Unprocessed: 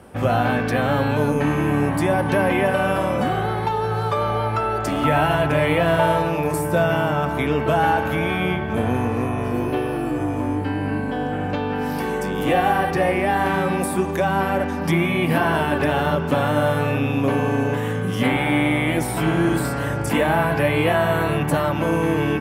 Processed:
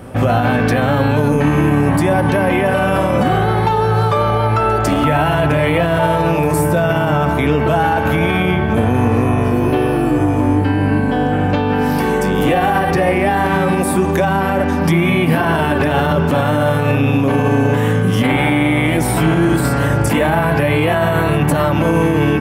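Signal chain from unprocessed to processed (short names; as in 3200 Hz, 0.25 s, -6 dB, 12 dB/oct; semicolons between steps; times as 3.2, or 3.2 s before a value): low shelf 220 Hz +4 dB; limiter -13 dBFS, peak gain reduction 8.5 dB; pre-echo 0.151 s -23 dB; gain +7.5 dB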